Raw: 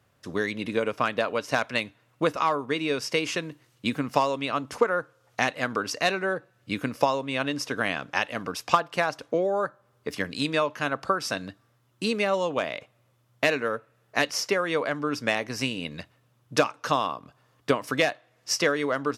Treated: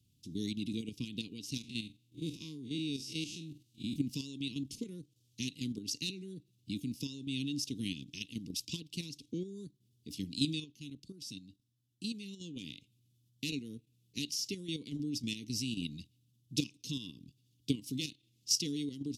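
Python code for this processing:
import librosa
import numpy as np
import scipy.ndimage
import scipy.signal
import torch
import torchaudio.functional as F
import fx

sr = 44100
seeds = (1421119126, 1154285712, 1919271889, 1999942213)

y = fx.spec_blur(x, sr, span_ms=97.0, at=(1.59, 3.96))
y = fx.edit(y, sr, fx.clip_gain(start_s=10.64, length_s=1.77, db=-7.5), tone=tone)
y = scipy.signal.sosfilt(scipy.signal.cheby2(4, 50, [580.0, 1700.0], 'bandstop', fs=sr, output='sos'), y)
y = fx.peak_eq(y, sr, hz=1000.0, db=8.0, octaves=0.51)
y = fx.level_steps(y, sr, step_db=9)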